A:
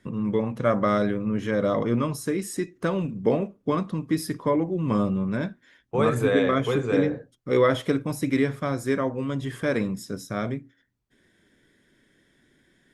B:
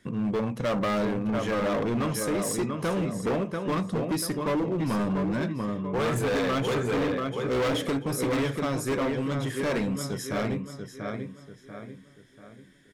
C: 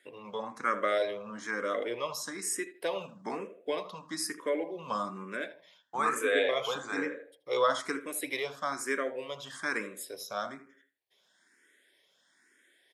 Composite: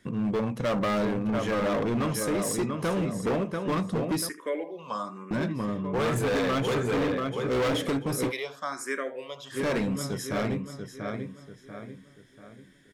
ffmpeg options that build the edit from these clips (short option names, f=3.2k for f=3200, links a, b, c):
-filter_complex "[2:a]asplit=2[a][b];[1:a]asplit=3[c][d][e];[c]atrim=end=4.292[f];[a]atrim=start=4.288:end=5.312[g];[d]atrim=start=5.308:end=8.33[h];[b]atrim=start=8.27:end=9.57[i];[e]atrim=start=9.51[j];[f][g]acrossfade=d=0.004:c1=hsin:c2=hsin[k];[k][h]acrossfade=d=0.004:c1=hsin:c2=hsin[l];[l][i]acrossfade=d=0.06:c1=tri:c2=tri[m];[m][j]acrossfade=d=0.06:c1=tri:c2=tri"